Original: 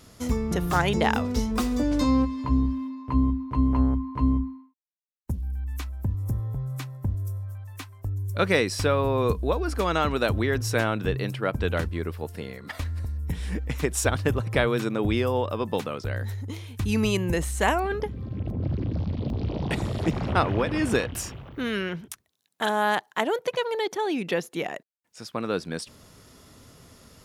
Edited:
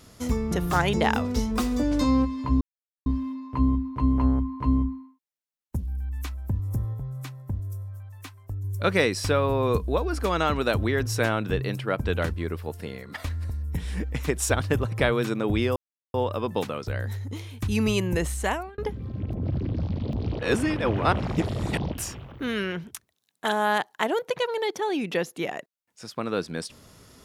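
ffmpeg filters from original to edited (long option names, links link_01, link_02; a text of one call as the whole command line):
ffmpeg -i in.wav -filter_complex "[0:a]asplit=8[link_01][link_02][link_03][link_04][link_05][link_06][link_07][link_08];[link_01]atrim=end=2.61,asetpts=PTS-STARTPTS,afade=type=out:start_time=2.606:duration=0.004:curve=hsin,apad=pad_dur=0.45[link_09];[link_02]atrim=start=2.61:end=6.492,asetpts=PTS-STARTPTS,afade=type=in:duration=0.004:curve=hsin[link_10];[link_03]atrim=start=6.488:end=8.192,asetpts=PTS-STARTPTS,volume=-3dB[link_11];[link_04]atrim=start=8.188:end=15.31,asetpts=PTS-STARTPTS,afade=type=out:start_time=7.118:duration=0.004:curve=hsin,apad=pad_dur=0.38[link_12];[link_05]atrim=start=15.31:end=17.95,asetpts=PTS-STARTPTS,afade=type=in:duration=0.004:curve=hsin,afade=type=out:start_time=2.19:duration=0.45[link_13];[link_06]atrim=start=17.95:end=19.562,asetpts=PTS-STARTPTS,afade=type=in:duration=0.004:curve=hsin[link_14];[link_07]atrim=start=19.558:end=21.092,asetpts=PTS-STARTPTS,areverse[link_15];[link_08]atrim=start=21.088[link_16];[link_09][link_10]concat=n=2:v=0:a=1[link_17];[link_17][link_11]acrossfade=duration=0.004:curve1=hsin:curve2=hsin[link_18];[link_12][link_13][link_14]concat=n=3:v=0:a=1[link_19];[link_18][link_19]acrossfade=duration=0.004:curve1=hsin:curve2=hsin[link_20];[link_20][link_15]acrossfade=duration=0.004:curve1=hsin:curve2=hsin[link_21];[link_21][link_16]acrossfade=duration=0.004:curve1=hsin:curve2=hsin" out.wav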